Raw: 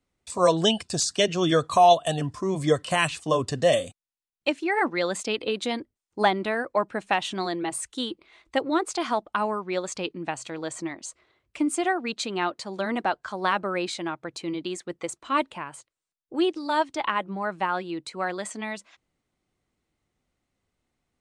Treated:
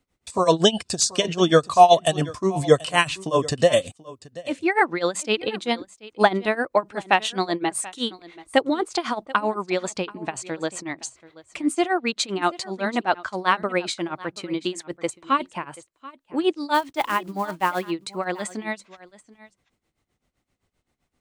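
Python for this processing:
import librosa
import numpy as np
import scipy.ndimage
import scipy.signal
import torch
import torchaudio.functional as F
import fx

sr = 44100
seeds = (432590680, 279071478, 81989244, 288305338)

y = fx.block_float(x, sr, bits=5, at=(16.73, 17.89), fade=0.02)
y = y * (1.0 - 0.88 / 2.0 + 0.88 / 2.0 * np.cos(2.0 * np.pi * 7.7 * (np.arange(len(y)) / sr)))
y = y + 10.0 ** (-19.5 / 20.0) * np.pad(y, (int(733 * sr / 1000.0), 0))[:len(y)]
y = F.gain(torch.from_numpy(y), 7.0).numpy()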